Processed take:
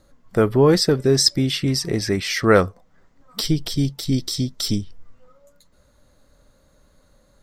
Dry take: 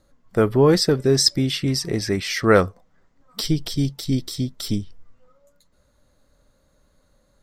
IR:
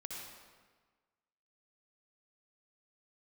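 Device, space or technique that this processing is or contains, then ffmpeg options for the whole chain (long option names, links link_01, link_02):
parallel compression: -filter_complex "[0:a]asplit=2[link_01][link_02];[link_02]acompressor=threshold=-34dB:ratio=6,volume=-3dB[link_03];[link_01][link_03]amix=inputs=2:normalize=0,asettb=1/sr,asplit=3[link_04][link_05][link_06];[link_04]atrim=end=4.144[link_07];[link_05]atrim=start=4.14:end=4.81,asetpts=PTS-STARTPTS,afade=type=in:duration=0.004:curve=qsin,afade=type=out:start_time=0.666:duration=0.004:curve=qsin,equalizer=frequency=5600:width=1.4:gain=5.5[link_08];[link_06]atrim=start=4.806[link_09];[link_07][link_08]acrossfade=duration=0.004:curve1=hsin:curve2=qsin[link_10];[link_10][link_09]acrossfade=duration=0.004:curve1=qsin:curve2=hsin"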